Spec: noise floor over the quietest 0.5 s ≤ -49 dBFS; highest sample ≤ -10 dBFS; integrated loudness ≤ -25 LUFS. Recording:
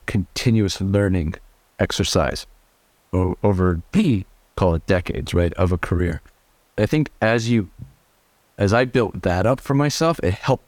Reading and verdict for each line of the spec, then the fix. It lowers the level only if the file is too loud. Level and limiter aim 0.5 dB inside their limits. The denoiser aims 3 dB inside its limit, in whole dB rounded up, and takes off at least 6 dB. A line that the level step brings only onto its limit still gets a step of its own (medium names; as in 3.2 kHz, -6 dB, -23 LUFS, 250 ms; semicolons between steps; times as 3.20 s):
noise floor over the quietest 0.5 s -60 dBFS: pass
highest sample -6.0 dBFS: fail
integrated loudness -20.5 LUFS: fail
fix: trim -5 dB